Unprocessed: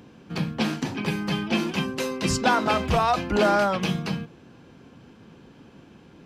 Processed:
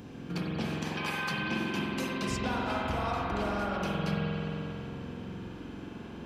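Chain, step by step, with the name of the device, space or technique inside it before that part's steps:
0:00.82–0:01.30: high-pass filter 400 Hz → 880 Hz 24 dB per octave
ASMR close-microphone chain (low-shelf EQ 170 Hz +5 dB; downward compressor 6 to 1, threshold −35 dBFS, peak gain reduction 18 dB; high-shelf EQ 6,900 Hz +5 dB)
spring reverb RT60 3.4 s, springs 45 ms, chirp 50 ms, DRR −4.5 dB

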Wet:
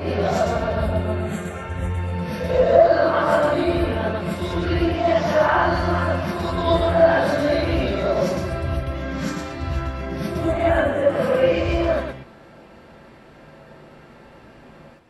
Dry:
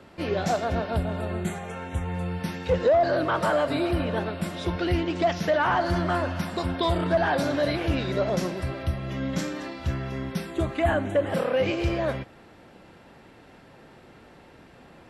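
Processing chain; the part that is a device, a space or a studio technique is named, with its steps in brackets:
reverse reverb (reversed playback; convolution reverb RT60 0.85 s, pre-delay 101 ms, DRR −9.5 dB; reversed playback)
level −5 dB

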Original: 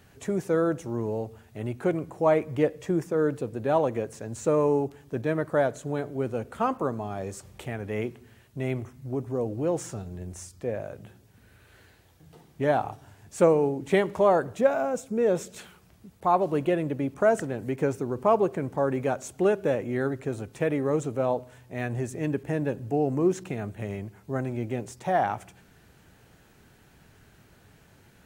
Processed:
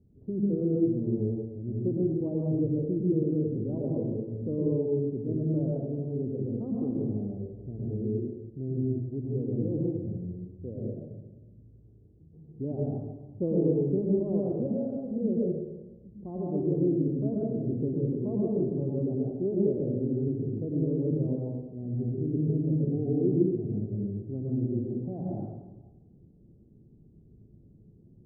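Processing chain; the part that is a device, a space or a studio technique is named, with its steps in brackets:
next room (low-pass filter 370 Hz 24 dB per octave; convolution reverb RT60 1.1 s, pre-delay 100 ms, DRR −4 dB)
level −3.5 dB

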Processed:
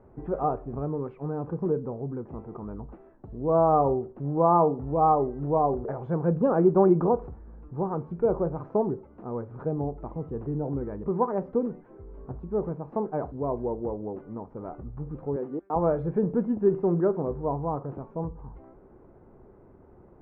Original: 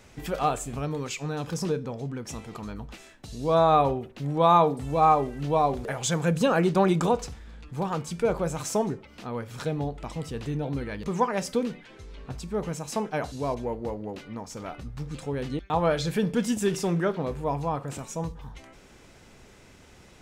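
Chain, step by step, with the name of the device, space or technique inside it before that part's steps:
0:15.36–0:15.76: high-pass filter 270 Hz 12 dB per octave
under water (low-pass filter 1,100 Hz 24 dB per octave; parametric band 370 Hz +7 dB 0.42 octaves)
level −1 dB

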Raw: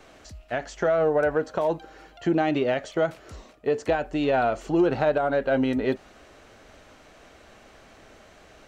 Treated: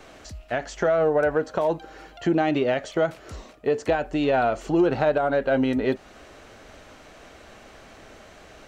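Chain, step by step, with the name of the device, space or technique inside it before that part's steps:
parallel compression (in parallel at −4.5 dB: downward compressor, threshold −33 dBFS, peak gain reduction 15 dB)

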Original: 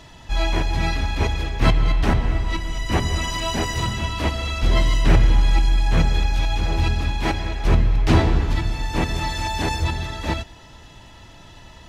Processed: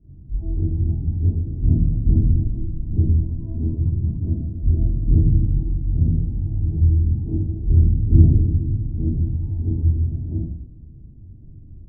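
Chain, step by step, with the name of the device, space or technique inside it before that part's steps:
next room (low-pass filter 260 Hz 24 dB per octave; convolution reverb RT60 0.70 s, pre-delay 26 ms, DRR −11 dB)
level −7.5 dB

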